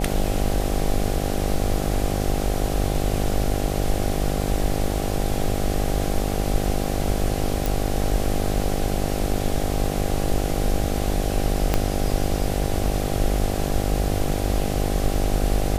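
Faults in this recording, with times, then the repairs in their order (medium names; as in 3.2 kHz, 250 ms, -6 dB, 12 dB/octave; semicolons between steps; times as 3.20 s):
buzz 50 Hz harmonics 16 -26 dBFS
7.66 s: pop
11.74 s: pop -5 dBFS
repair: de-click; de-hum 50 Hz, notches 16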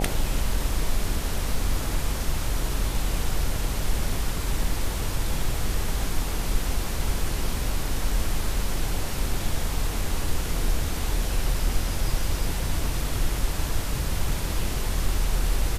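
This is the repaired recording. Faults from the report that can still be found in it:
11.74 s: pop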